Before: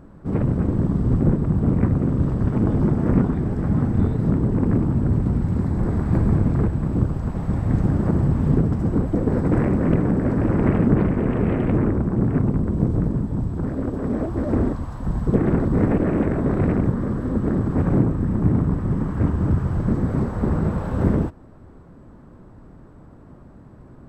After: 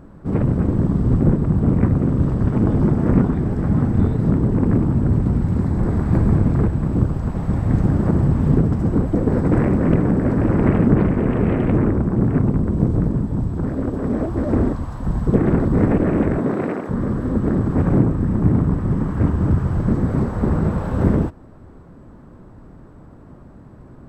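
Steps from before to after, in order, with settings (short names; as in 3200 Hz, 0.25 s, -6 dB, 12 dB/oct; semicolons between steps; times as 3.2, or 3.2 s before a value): 16.38–16.89 HPF 130 Hz -> 540 Hz 12 dB/oct; gain +2.5 dB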